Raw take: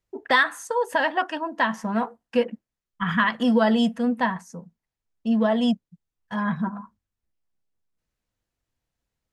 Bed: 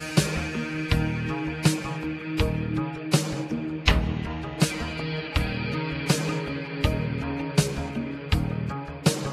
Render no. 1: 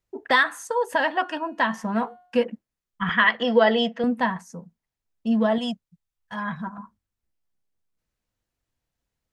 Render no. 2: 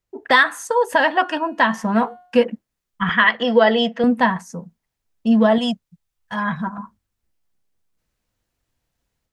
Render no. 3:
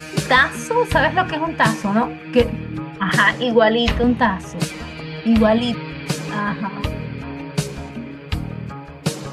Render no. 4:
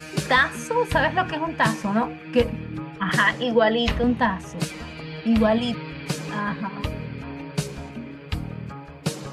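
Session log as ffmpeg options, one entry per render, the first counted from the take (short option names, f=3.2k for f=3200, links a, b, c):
-filter_complex "[0:a]asettb=1/sr,asplit=3[a][b][c];[a]atrim=end=0.894[d];[b]atrim=start=0.89:end=2.38,asetpts=PTS-STARTPTS,afade=t=in:d=0.004:c=qsin,afade=t=out:st=1.486:d=0.004:c=qsin,bandreject=f=360.2:t=h:w=4,bandreject=f=720.4:t=h:w=4,bandreject=f=1.0806k:t=h:w=4,bandreject=f=1.4408k:t=h:w=4,bandreject=f=1.801k:t=h:w=4,bandreject=f=2.1612k:t=h:w=4,bandreject=f=2.5214k:t=h:w=4,bandreject=f=2.8816k:t=h:w=4,bandreject=f=3.2418k:t=h:w=4,bandreject=f=3.602k:t=h:w=4,bandreject=f=3.9622k:t=h:w=4,bandreject=f=4.3224k:t=h:w=4[e];[c]atrim=start=2.376[f];[d][e]acrossfade=d=0.004:c1=hsin:c2=qsin[g];[g][f]acrossfade=d=0.004:c1=qsin:c2=hsin,asettb=1/sr,asplit=3[h][i][j];[h]atrim=end=3.094[k];[i]atrim=start=3.09:end=4.04,asetpts=PTS-STARTPTS,afade=t=in:d=0.004:c=qsin,afade=t=out:st=0.946:d=0.004:c=qsin,highpass=160,equalizer=f=170:t=q:w=4:g=-9,equalizer=f=260:t=q:w=4:g=-7,equalizer=f=460:t=q:w=4:g=6,equalizer=f=710:t=q:w=4:g=4,equalizer=f=2k:t=q:w=4:g=8,equalizer=f=3.1k:t=q:w=4:g=5,lowpass=f=5.5k:w=0.5412,lowpass=f=5.5k:w=1.3066[l];[j]atrim=start=4.036[m];[k][l]acrossfade=d=0.004:c1=hsin:c2=qsin[n];[n][m]acrossfade=d=0.004:c1=qsin:c2=hsin,asettb=1/sr,asplit=3[o][p][q];[o]atrim=end=5.584[r];[p]atrim=start=5.58:end=6.78,asetpts=PTS-STARTPTS,afade=t=in:d=0.004:c=qsin,afade=t=out:st=1.196:d=0.004:c=qsin,equalizer=f=280:t=o:w=2.1:g=-8.5[s];[q]atrim=start=6.776[t];[r][s]acrossfade=d=0.004:c1=hsin:c2=qsin[u];[u][t]acrossfade=d=0.004:c1=qsin:c2=hsin"
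-af "dynaudnorm=f=140:g=3:m=7dB"
-filter_complex "[1:a]volume=-0.5dB[a];[0:a][a]amix=inputs=2:normalize=0"
-af "volume=-4.5dB"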